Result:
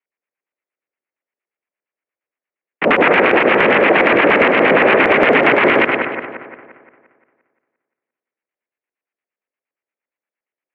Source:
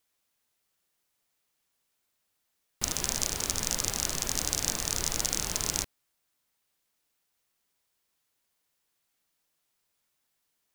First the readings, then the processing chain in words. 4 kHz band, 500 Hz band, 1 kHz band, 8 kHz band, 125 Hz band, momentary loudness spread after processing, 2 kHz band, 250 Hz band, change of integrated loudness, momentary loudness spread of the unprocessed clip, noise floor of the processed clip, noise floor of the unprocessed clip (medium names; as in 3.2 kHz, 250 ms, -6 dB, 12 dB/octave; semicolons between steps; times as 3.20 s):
+7.5 dB, +31.0 dB, +26.5 dB, under -30 dB, +10.5 dB, 9 LU, +29.0 dB, +25.5 dB, +17.0 dB, 3 LU, under -85 dBFS, -79 dBFS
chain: expander -33 dBFS; waveshaping leveller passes 2; in parallel at +2.5 dB: compressor with a negative ratio -31 dBFS, ratio -0.5; on the sum: mistuned SSB -56 Hz 300–2900 Hz; LFO low-pass square 8.6 Hz 540–2200 Hz; on a send: two-band feedback delay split 1.9 kHz, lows 174 ms, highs 101 ms, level -8 dB; on the sum: loudness maximiser +18.5 dB; trim -1 dB